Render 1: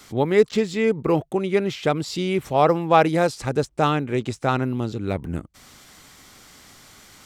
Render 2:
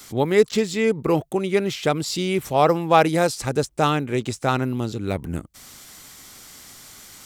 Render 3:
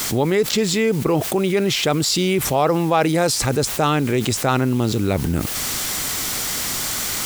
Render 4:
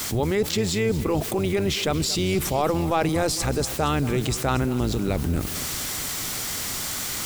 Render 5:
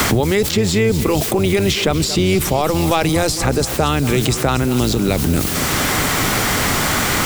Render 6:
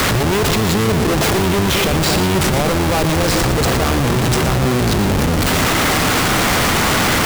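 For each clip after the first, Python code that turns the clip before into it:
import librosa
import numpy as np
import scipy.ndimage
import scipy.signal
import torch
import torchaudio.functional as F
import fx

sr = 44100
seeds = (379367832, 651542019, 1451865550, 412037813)

y1 = fx.high_shelf(x, sr, hz=5800.0, db=11.0)
y2 = fx.quant_dither(y1, sr, seeds[0], bits=8, dither='triangular')
y2 = fx.env_flatten(y2, sr, amount_pct=70)
y2 = y2 * 10.0 ** (-4.0 / 20.0)
y3 = fx.octave_divider(y2, sr, octaves=1, level_db=-3.0)
y3 = fx.echo_feedback(y3, sr, ms=229, feedback_pct=59, wet_db=-16)
y3 = y3 * 10.0 ** (-5.5 / 20.0)
y4 = fx.band_squash(y3, sr, depth_pct=100)
y4 = y4 * 10.0 ** (6.5 / 20.0)
y5 = fx.schmitt(y4, sr, flips_db=-20.5)
y5 = y5 + 10.0 ** (-9.5 / 20.0) * np.pad(y5, (int(117 * sr / 1000.0), 0))[:len(y5)]
y5 = y5 * 10.0 ** (1.0 / 20.0)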